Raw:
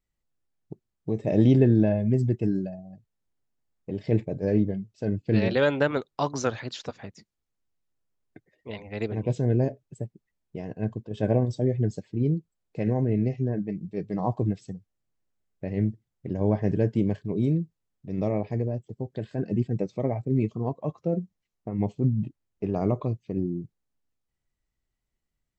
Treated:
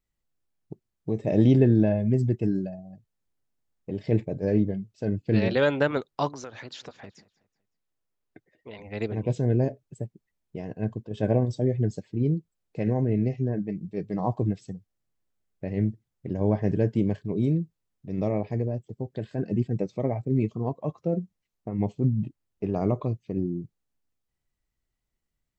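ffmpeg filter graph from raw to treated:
-filter_complex "[0:a]asettb=1/sr,asplit=3[a][b][c];[a]atrim=end=6.294[d];[b]atrim=start=6.29:end=8.79,asetpts=PTS-STARTPTS,afade=t=in:d=0.004:c=qsin,afade=t=out:st=2.496:d=0.004:c=qsin,bass=f=250:g=-5,treble=f=4k:g=-3,acompressor=threshold=-36dB:ratio=6:attack=3.2:release=140:knee=1:detection=peak,aecho=1:1:187|374|561:0.0841|0.0328|0.0128,atrim=end_sample=110250[e];[c]atrim=start=8.786[f];[d][e]acrossfade=d=0.004:c1=hsin:c2=qsin[g];[g][f]acrossfade=d=0.004:c1=qsin:c2=hsin"

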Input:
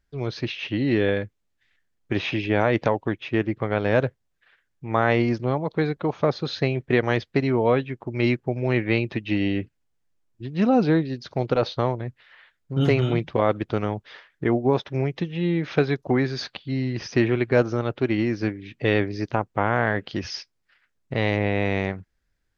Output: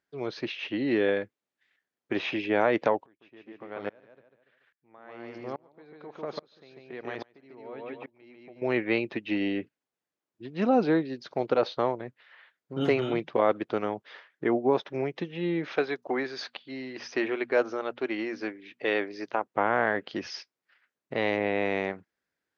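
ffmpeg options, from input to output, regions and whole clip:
-filter_complex "[0:a]asettb=1/sr,asplit=3[a][b][c];[a]atrim=end=3.064[d];[b]atrim=start=3.06:end=8.62,asetpts=PTS-STARTPTS,afade=t=in:d=0.004:c=qsin,afade=t=out:st=5.556:d=0.004:c=qsin,acompressor=threshold=-29dB:ratio=2:attack=3.2:release=140:knee=1:detection=peak,aecho=1:1:145|290|435|580:0.668|0.174|0.0452|0.0117,atrim=end_sample=245196,aeval=exprs='val(0)*pow(10,-29*if(lt(mod(-1.2*n/s,1),2*abs(-1.2)/1000),1-mod(-1.2*n/s,1)/(2*abs(-1.2)/1000),(mod(-1.2*n/s,1)-2*abs(-1.2)/1000)/(1-2*abs(-1.2)/1000))/20)':c=same[e];[c]atrim=start=8.616[f];[d][e]acrossfade=d=0.004:c1=hsin:c2=qsin[g];[g][f]acrossfade=d=0.004:c1=qsin:c2=hsin,asettb=1/sr,asplit=3[h][i][j];[h]atrim=end=15.724[k];[i]atrim=start=15.72:end=19.46,asetpts=PTS-STARTPTS,afade=t=in:d=0.004:c=qsin,afade=t=out:st=3.736:d=0.004:c=qsin,equalizer=f=83:w=0.4:g=-13.5,bandreject=f=60:t=h:w=6,bandreject=f=120:t=h:w=6,bandreject=f=180:t=h:w=6,bandreject=f=240:t=h:w=6[l];[j]atrim=start=19.456[m];[k][l]acrossfade=d=0.004:c1=hsin:c2=qsin[n];[n][m]acrossfade=d=0.004:c1=qsin:c2=hsin,highpass=280,highshelf=f=3.6k:g=-7,volume=-1.5dB"

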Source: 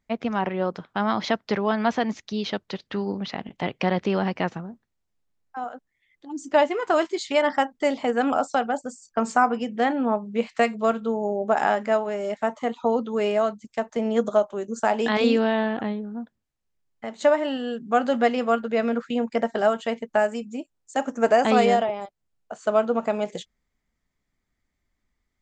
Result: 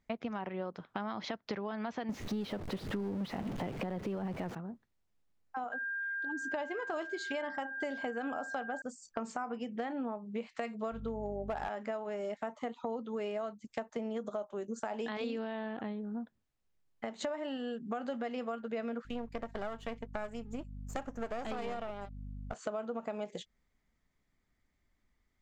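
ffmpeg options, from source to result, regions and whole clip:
-filter_complex "[0:a]asettb=1/sr,asplit=3[a][b][c];[a]atrim=end=2.094[d];[b]atrim=start=2.09:end=4.55,asetpts=PTS-STARTPTS,afade=t=in:d=0.004:c=qsin,afade=t=out:st=2.456:d=0.004:c=qsin,aeval=exprs='val(0)+0.5*0.0376*sgn(val(0))':c=same,tiltshelf=f=1.4k:g=6[e];[c]atrim=start=4.546[f];[d][e]acrossfade=d=0.004:c1=hsin:c2=qsin[g];[g][f]acrossfade=d=0.004:c1=qsin:c2=hsin,asettb=1/sr,asplit=3[h][i][j];[h]atrim=end=5.724[k];[i]atrim=start=5.72:end=8.82,asetpts=PTS-STARTPTS,afade=t=in:d=0.004:c=qsin,afade=t=out:st=3.096:d=0.004:c=qsin,aeval=exprs='val(0)+0.0316*sin(2*PI*1600*n/s)':c=same,asplit=2[l][m];[m]adelay=63,lowpass=f=900:p=1,volume=-21.5dB,asplit=2[n][o];[o]adelay=63,lowpass=f=900:p=1,volume=0.4,asplit=2[p][q];[q]adelay=63,lowpass=f=900:p=1,volume=0.4[r];[l][n][p][r]amix=inputs=4:normalize=0,atrim=end_sample=136710[s];[j]atrim=start=8.816[t];[k][s]acrossfade=d=0.004:c1=hsin:c2=qsin[u];[u][t]acrossfade=d=0.004:c1=qsin:c2=hsin,asettb=1/sr,asplit=3[v][w][x];[v]atrim=end=10.924[y];[w]atrim=start=10.92:end=11.69,asetpts=PTS-STARTPTS,afade=t=in:d=0.004:c=qsin,afade=t=out:st=0.766:d=0.004:c=qsin,equalizer=f=7.2k:w=7.2:g=-5.5,aeval=exprs='val(0)+0.0224*(sin(2*PI*50*n/s)+sin(2*PI*2*50*n/s)/2+sin(2*PI*3*50*n/s)/3+sin(2*PI*4*50*n/s)/4+sin(2*PI*5*50*n/s)/5)':c=same,asoftclip=type=hard:threshold=-14.5dB[z];[x]atrim=start=11.686[aa];[y][z]acrossfade=d=0.004:c1=hsin:c2=qsin[ab];[ab][aa]acrossfade=d=0.004:c1=qsin:c2=hsin,asettb=1/sr,asplit=3[ac][ad][ae];[ac]atrim=end=19.054[af];[ad]atrim=start=19.05:end=22.54,asetpts=PTS-STARTPTS,afade=t=in:d=0.004:c=qsin,afade=t=out:st=3.486:d=0.004:c=qsin,aeval=exprs='if(lt(val(0),0),0.251*val(0),val(0))':c=same,aeval=exprs='val(0)+0.00794*(sin(2*PI*50*n/s)+sin(2*PI*2*50*n/s)/2+sin(2*PI*3*50*n/s)/3+sin(2*PI*4*50*n/s)/4+sin(2*PI*5*50*n/s)/5)':c=same[ag];[ae]atrim=start=22.536[ah];[af][ag]acrossfade=d=0.004:c1=hsin:c2=qsin[ai];[ai][ah]acrossfade=d=0.004:c1=qsin:c2=hsin,highshelf=f=6.5k:g=-6,alimiter=limit=-13.5dB:level=0:latency=1:release=55,acompressor=threshold=-36dB:ratio=5"

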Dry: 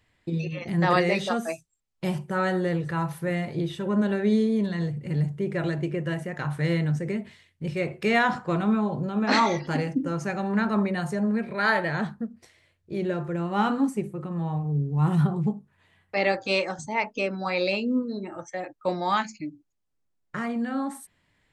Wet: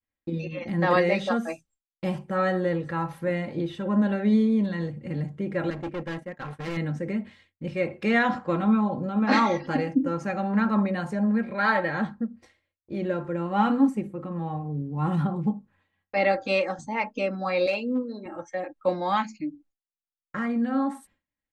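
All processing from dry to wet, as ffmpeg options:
-filter_complex "[0:a]asettb=1/sr,asplit=3[a][b][c];[a]atrim=end=5.704[d];[b]atrim=start=5.7:end=6.77,asetpts=PTS-STARTPTS,afade=t=in:d=0.004:c=qsin,afade=t=out:st=1.066:d=0.004:c=qsin,acontrast=33,agate=range=-33dB:threshold=-20dB:ratio=3:release=100:detection=peak,volume=29.5dB,asoftclip=hard,volume=-29.5dB[e];[c]atrim=start=6.766[f];[d][e]acrossfade=d=0.004:c1=hsin:c2=qsin[g];[g][f]acrossfade=d=0.004:c1=qsin:c2=hsin,asettb=1/sr,asplit=3[h][i][j];[h]atrim=end=17.664[k];[i]atrim=start=17.66:end=18.26,asetpts=PTS-STARTPTS,afade=t=in:d=0.004:c=qsin,afade=t=out:st=0.596:d=0.004:c=qsin,asoftclip=type=hard:threshold=-18dB,highpass=320[l];[j]atrim=start=18.256[m];[k][l]acrossfade=d=0.004:c1=hsin:c2=qsin[n];[n][m]acrossfade=d=0.004:c1=qsin:c2=hsin,lowpass=f=2.6k:p=1,agate=range=-33dB:threshold=-54dB:ratio=3:detection=peak,aecho=1:1:3.7:0.55"

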